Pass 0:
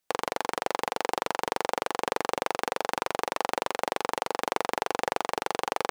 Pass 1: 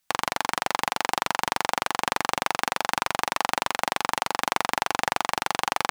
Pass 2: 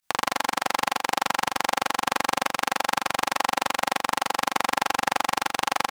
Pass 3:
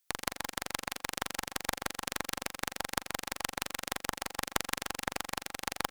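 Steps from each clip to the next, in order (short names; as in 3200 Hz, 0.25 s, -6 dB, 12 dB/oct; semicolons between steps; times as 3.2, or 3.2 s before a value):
bell 450 Hz -14 dB 0.98 oct; gain +7 dB
pump 120 bpm, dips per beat 1, -18 dB, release 66 ms; on a send: feedback echo 82 ms, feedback 16%, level -5 dB
rotary speaker horn 6.3 Hz; added noise blue -59 dBFS; added harmonics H 2 -18 dB, 3 -11 dB, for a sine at -4 dBFS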